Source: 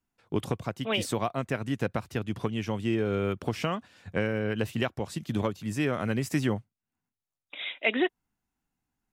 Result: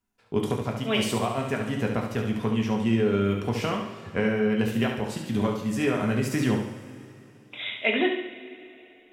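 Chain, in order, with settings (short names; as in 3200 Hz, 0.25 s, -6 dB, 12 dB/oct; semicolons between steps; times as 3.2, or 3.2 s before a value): flutter echo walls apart 12 m, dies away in 0.63 s; two-slope reverb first 0.32 s, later 3.1 s, from -18 dB, DRR 2 dB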